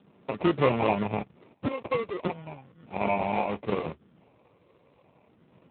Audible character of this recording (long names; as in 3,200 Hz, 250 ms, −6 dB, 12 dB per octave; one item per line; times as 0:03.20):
phaser sweep stages 6, 0.37 Hz, lowest notch 220–2,300 Hz
aliases and images of a low sample rate 1,600 Hz, jitter 0%
AMR narrowband